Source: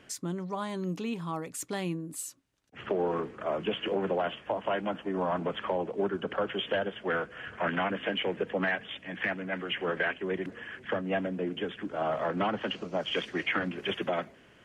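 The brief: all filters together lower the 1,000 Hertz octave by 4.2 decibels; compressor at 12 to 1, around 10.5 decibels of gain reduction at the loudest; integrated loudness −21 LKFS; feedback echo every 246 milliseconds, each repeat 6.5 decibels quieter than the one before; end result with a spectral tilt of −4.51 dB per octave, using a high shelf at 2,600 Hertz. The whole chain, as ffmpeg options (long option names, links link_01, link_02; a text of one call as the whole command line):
ffmpeg -i in.wav -af "equalizer=frequency=1000:width_type=o:gain=-5,highshelf=frequency=2600:gain=-6,acompressor=threshold=-37dB:ratio=12,aecho=1:1:246|492|738|984|1230|1476:0.473|0.222|0.105|0.0491|0.0231|0.0109,volume=20dB" out.wav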